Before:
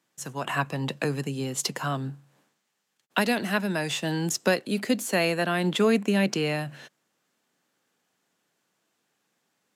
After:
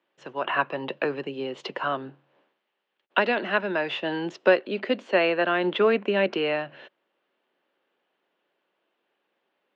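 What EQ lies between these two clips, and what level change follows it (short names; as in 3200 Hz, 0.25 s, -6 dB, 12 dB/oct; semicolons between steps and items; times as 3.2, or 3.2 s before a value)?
dynamic EQ 1400 Hz, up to +5 dB, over -40 dBFS, Q 1.8; speaker cabinet 290–3400 Hz, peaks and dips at 370 Hz +7 dB, 570 Hz +7 dB, 950 Hz +3 dB, 2900 Hz +4 dB; -1.0 dB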